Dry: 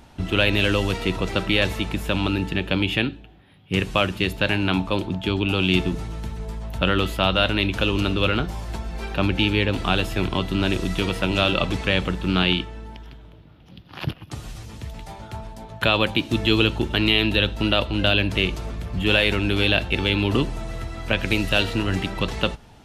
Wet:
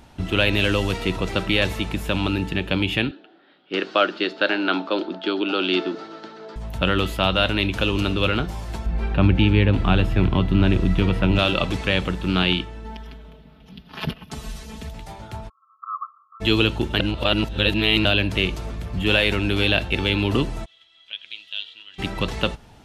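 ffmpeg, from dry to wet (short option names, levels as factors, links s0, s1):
-filter_complex "[0:a]asettb=1/sr,asplit=3[s0][s1][s2];[s0]atrim=end=3.114[s3];[s1]atrim=start=3.11:end=6.56,asetpts=PTS-STARTPTS,afade=t=in:d=0.004:c=qsin,afade=t=out:st=3.446:d=0.004:c=qsin,highpass=f=270:w=0.5412,highpass=f=270:w=1.3066,equalizer=f=330:t=q:w=4:g=5,equalizer=f=620:t=q:w=4:g=4,equalizer=f=990:t=q:w=4:g=-3,equalizer=f=1400:t=q:w=4:g=9,equalizer=f=2400:t=q:w=4:g=-5,equalizer=f=4500:t=q:w=4:g=5,lowpass=f=5000:w=0.5412,lowpass=f=5000:w=1.3066[s4];[s2]atrim=start=6.556[s5];[s3][s4]acrossfade=d=0.004:c1=hsin:c2=qsin[s6];[s6][s5]acrossfade=d=0.004:c1=qsin:c2=hsin,asettb=1/sr,asplit=3[s7][s8][s9];[s7]atrim=end=8.864[s10];[s8]atrim=start=8.86:end=11.39,asetpts=PTS-STARTPTS,afade=t=in:d=0.004:c=qsin,afade=t=out:st=2.526:d=0.004:c=qsin,bass=f=250:g=8,treble=f=4000:g=-13[s11];[s9]atrim=start=11.386[s12];[s10][s11]acrossfade=d=0.004:c1=hsin:c2=qsin[s13];[s13][s12]acrossfade=d=0.004:c1=qsin:c2=hsin,asettb=1/sr,asplit=3[s14][s15][s16];[s14]atrim=end=12.844[s17];[s15]atrim=start=12.84:end=14.89,asetpts=PTS-STARTPTS,afade=t=in:d=0.004:c=qsin,afade=t=out:st=2.046:d=0.004:c=qsin,aecho=1:1:4.6:0.95,atrim=end_sample=90405[s18];[s16]atrim=start=14.886[s19];[s17][s18]acrossfade=d=0.004:c1=hsin:c2=qsin[s20];[s20][s19]acrossfade=d=0.004:c1=qsin:c2=hsin,asplit=3[s21][s22][s23];[s21]afade=t=out:st=15.48:d=0.02[s24];[s22]asuperpass=centerf=1200:order=20:qfactor=4.1,afade=t=in:st=15.48:d=0.02,afade=t=out:st=16.4:d=0.02[s25];[s23]afade=t=in:st=16.4:d=0.02[s26];[s24][s25][s26]amix=inputs=3:normalize=0,asplit=3[s27][s28][s29];[s27]afade=t=out:st=20.64:d=0.02[s30];[s28]bandpass=f=3300:t=q:w=9.4,afade=t=in:st=20.64:d=0.02,afade=t=out:st=21.98:d=0.02[s31];[s29]afade=t=in:st=21.98:d=0.02[s32];[s30][s31][s32]amix=inputs=3:normalize=0,asplit=3[s33][s34][s35];[s33]atrim=end=17.002[s36];[s34]atrim=start=16.998:end=18.052,asetpts=PTS-STARTPTS,areverse[s37];[s35]atrim=start=18.048[s38];[s36][s37]acrossfade=d=0.004:c1=hsin:c2=hsin[s39];[s39][s38]acrossfade=d=0.004:c1=hsin:c2=hsin"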